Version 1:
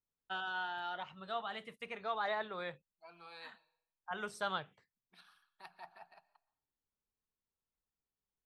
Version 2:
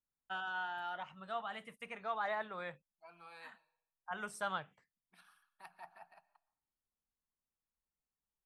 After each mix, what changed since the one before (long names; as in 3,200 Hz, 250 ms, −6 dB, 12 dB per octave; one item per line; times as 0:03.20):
master: add graphic EQ with 15 bands 100 Hz −6 dB, 400 Hz −6 dB, 4,000 Hz −9 dB, 10,000 Hz +6 dB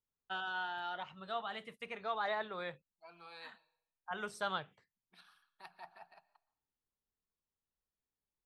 master: add graphic EQ with 15 bands 100 Hz +6 dB, 400 Hz +6 dB, 4,000 Hz +9 dB, 10,000 Hz −6 dB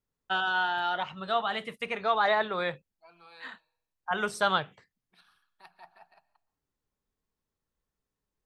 first voice +11.5 dB